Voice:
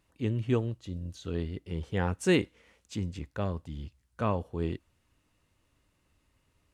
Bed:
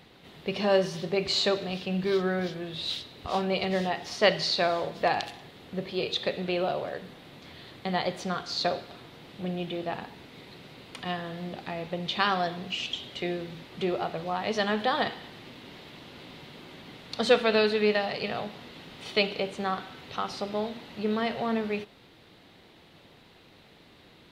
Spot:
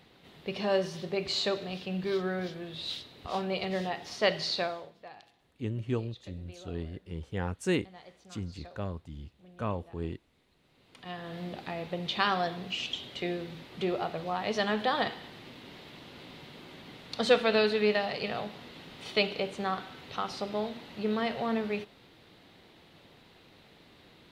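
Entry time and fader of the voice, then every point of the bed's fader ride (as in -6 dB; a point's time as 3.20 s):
5.40 s, -4.0 dB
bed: 4.60 s -4.5 dB
5.03 s -23 dB
10.56 s -23 dB
11.36 s -2 dB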